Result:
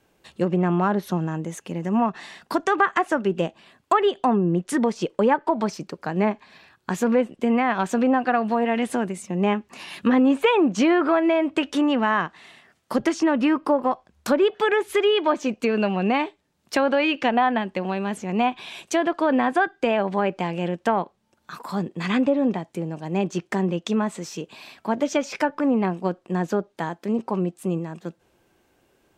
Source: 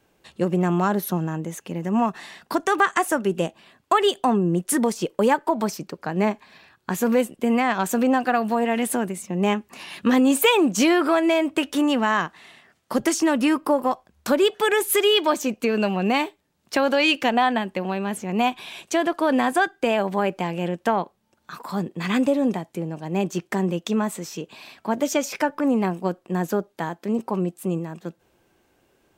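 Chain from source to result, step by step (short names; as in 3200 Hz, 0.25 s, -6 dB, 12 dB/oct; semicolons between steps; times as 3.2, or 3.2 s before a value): treble ducked by the level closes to 2200 Hz, closed at -15 dBFS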